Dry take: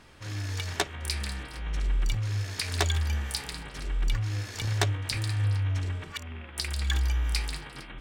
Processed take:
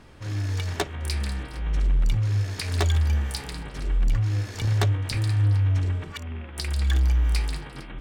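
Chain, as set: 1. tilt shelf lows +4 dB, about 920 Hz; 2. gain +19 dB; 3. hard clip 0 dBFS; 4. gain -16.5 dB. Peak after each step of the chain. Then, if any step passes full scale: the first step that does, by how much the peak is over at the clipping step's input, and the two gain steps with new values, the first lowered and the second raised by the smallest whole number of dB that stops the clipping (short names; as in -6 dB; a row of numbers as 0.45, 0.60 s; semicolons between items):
-11.0, +8.0, 0.0, -16.5 dBFS; step 2, 8.0 dB; step 2 +11 dB, step 4 -8.5 dB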